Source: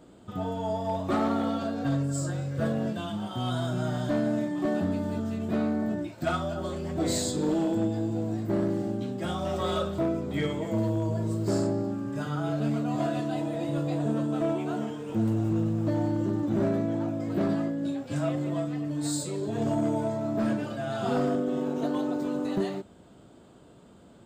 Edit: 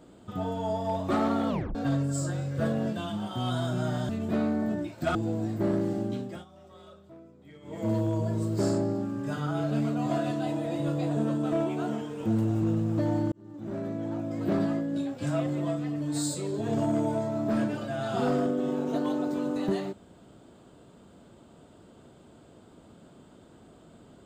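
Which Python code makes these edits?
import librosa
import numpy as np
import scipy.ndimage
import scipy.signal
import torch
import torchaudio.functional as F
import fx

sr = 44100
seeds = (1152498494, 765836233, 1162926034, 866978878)

y = fx.edit(x, sr, fx.tape_stop(start_s=1.49, length_s=0.26),
    fx.cut(start_s=4.09, length_s=1.2),
    fx.cut(start_s=6.35, length_s=1.69),
    fx.fade_down_up(start_s=9.05, length_s=1.75, db=-22.5, fade_s=0.29),
    fx.fade_in_span(start_s=16.21, length_s=1.19), tone=tone)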